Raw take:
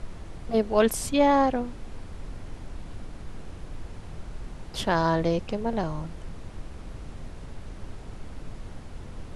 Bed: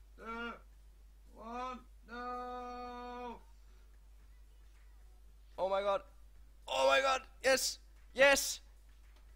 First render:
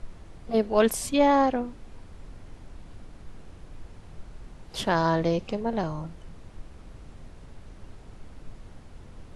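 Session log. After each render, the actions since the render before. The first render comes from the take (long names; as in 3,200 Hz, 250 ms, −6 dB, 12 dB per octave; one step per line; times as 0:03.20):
noise reduction from a noise print 6 dB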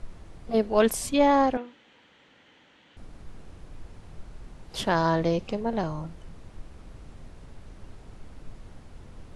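0:01.57–0:02.97: loudspeaker in its box 390–6,000 Hz, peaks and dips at 390 Hz −8 dB, 670 Hz −9 dB, 1,100 Hz −6 dB, 1,900 Hz +5 dB, 3,100 Hz +9 dB, 5,100 Hz −9 dB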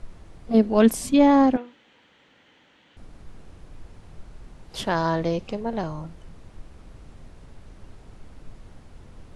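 0:00.50–0:01.56: parametric band 240 Hz +10.5 dB 0.84 octaves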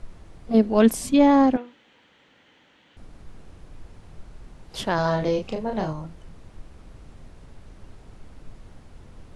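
0:04.95–0:05.93: double-tracking delay 32 ms −4 dB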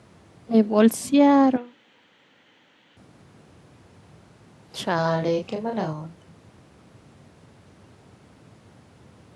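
high-pass filter 97 Hz 24 dB per octave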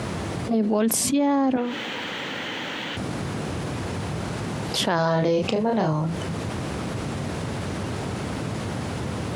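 brickwall limiter −15 dBFS, peak gain reduction 9 dB
envelope flattener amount 70%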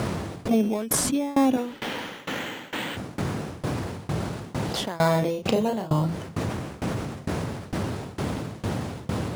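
in parallel at −6 dB: sample-and-hold swept by an LFO 12×, swing 60% 0.26 Hz
on the sum: shaped tremolo saw down 2.2 Hz, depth 95%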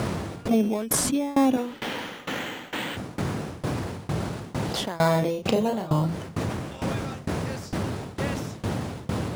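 mix in bed −10.5 dB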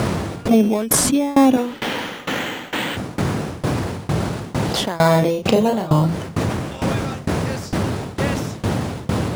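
level +7.5 dB
brickwall limiter −2 dBFS, peak gain reduction 2 dB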